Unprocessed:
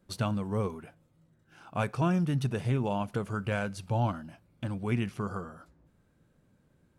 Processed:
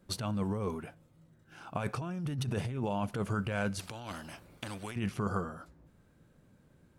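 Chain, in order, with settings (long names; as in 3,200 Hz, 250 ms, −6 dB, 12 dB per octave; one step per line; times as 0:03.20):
compressor whose output falls as the input rises −33 dBFS, ratio −1
0:03.79–0:04.96: every bin compressed towards the loudest bin 2 to 1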